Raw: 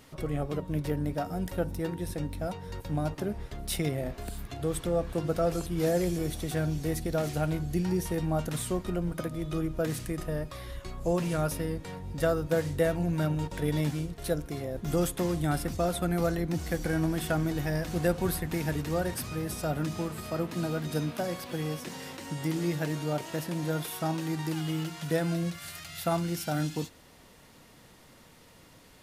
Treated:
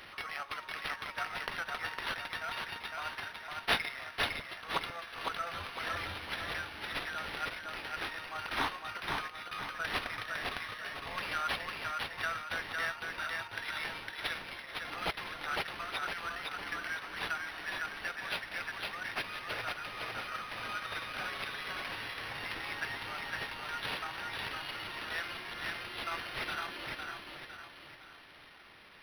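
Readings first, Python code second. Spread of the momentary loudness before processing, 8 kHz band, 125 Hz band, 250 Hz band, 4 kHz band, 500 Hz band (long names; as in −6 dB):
7 LU, −12.5 dB, −22.0 dB, −20.5 dB, +4.0 dB, −15.5 dB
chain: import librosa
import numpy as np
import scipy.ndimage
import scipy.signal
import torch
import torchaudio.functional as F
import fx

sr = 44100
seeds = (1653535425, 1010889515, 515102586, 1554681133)

y = scipy.signal.sosfilt(scipy.signal.butter(4, 1300.0, 'highpass', fs=sr, output='sos'), x)
y = fx.rider(y, sr, range_db=10, speed_s=2.0)
y = fx.echo_feedback(y, sr, ms=507, feedback_pct=44, wet_db=-3)
y = np.interp(np.arange(len(y)), np.arange(len(y))[::6], y[::6])
y = y * librosa.db_to_amplitude(4.0)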